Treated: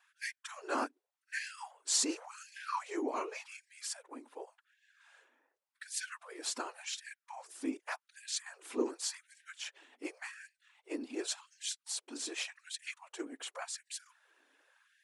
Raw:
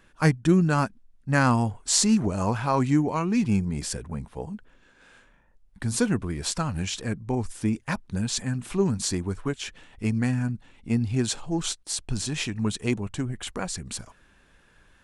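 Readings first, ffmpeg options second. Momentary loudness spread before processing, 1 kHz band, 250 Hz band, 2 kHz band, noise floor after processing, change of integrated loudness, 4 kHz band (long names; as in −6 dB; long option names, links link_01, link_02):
12 LU, −12.0 dB, −19.0 dB, −10.0 dB, below −85 dBFS, −13.0 dB, −8.0 dB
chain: -af "afftfilt=real='hypot(re,im)*cos(2*PI*random(0))':imag='hypot(re,im)*sin(2*PI*random(1))':win_size=512:overlap=0.75,afftfilt=real='re*gte(b*sr/1024,230*pow(1600/230,0.5+0.5*sin(2*PI*0.88*pts/sr)))':imag='im*gte(b*sr/1024,230*pow(1600/230,0.5+0.5*sin(2*PI*0.88*pts/sr)))':win_size=1024:overlap=0.75,volume=-2dB"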